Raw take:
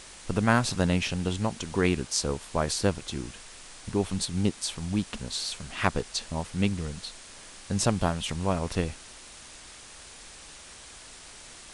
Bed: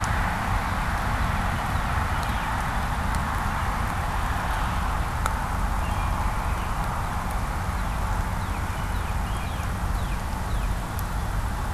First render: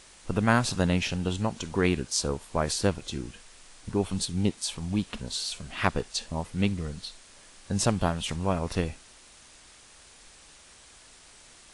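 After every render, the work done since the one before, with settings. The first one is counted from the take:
noise reduction from a noise print 6 dB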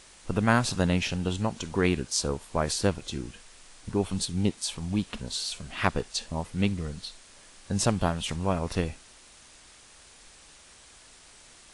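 no processing that can be heard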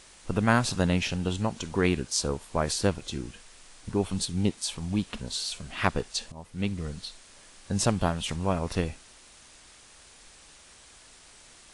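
0:06.32–0:06.88: fade in, from −16 dB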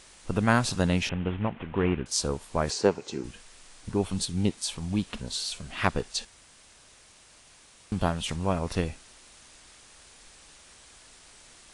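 0:01.09–0:02.06: variable-slope delta modulation 16 kbit/s
0:02.70–0:03.24: loudspeaker in its box 170–7,400 Hz, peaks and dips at 420 Hz +10 dB, 880 Hz +7 dB, 3,400 Hz −8 dB
0:06.25–0:07.92: fill with room tone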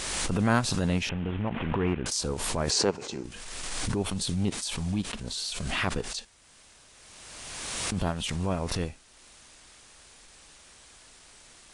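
transient designer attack −9 dB, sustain −5 dB
background raised ahead of every attack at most 26 dB per second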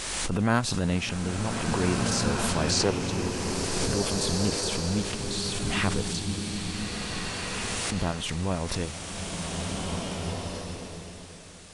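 slow-attack reverb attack 1,840 ms, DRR 0.5 dB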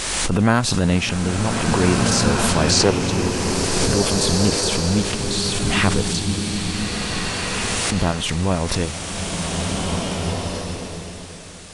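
level +8.5 dB
brickwall limiter −2 dBFS, peak gain reduction 3 dB

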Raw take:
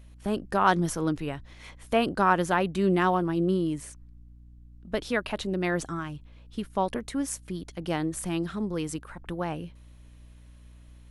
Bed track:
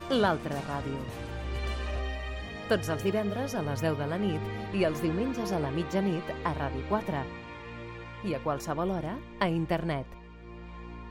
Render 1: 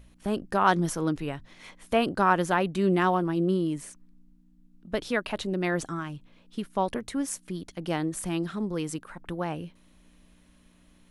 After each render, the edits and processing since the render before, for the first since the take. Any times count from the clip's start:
hum removal 60 Hz, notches 2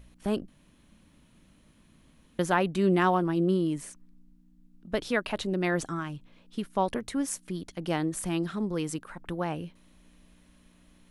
0:00.48–0:02.39: fill with room tone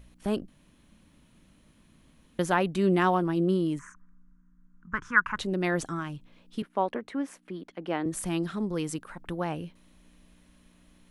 0:03.79–0:05.38: drawn EQ curve 160 Hz 0 dB, 300 Hz −10 dB, 700 Hz −22 dB, 1,000 Hz +10 dB, 1,500 Hz +14 dB, 2,700 Hz −11 dB, 4,200 Hz −26 dB, 6,400 Hz −3 dB, 12,000 Hz −25 dB
0:06.62–0:08.06: three-way crossover with the lows and the highs turned down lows −19 dB, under 200 Hz, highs −18 dB, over 3,100 Hz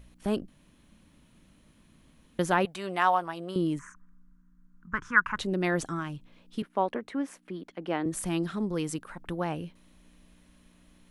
0:02.65–0:03.56: low shelf with overshoot 470 Hz −13.5 dB, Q 1.5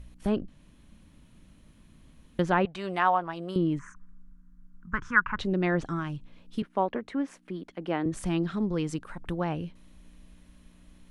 treble cut that deepens with the level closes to 2,800 Hz, closed at −23 dBFS
low-shelf EQ 130 Hz +8.5 dB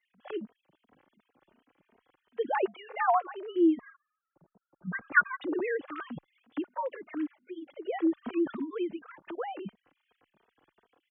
three sine waves on the formant tracks
barber-pole flanger 2.9 ms +2.7 Hz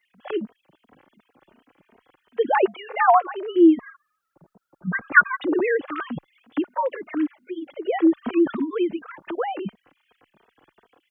level +9.5 dB
brickwall limiter −1 dBFS, peak gain reduction 1 dB

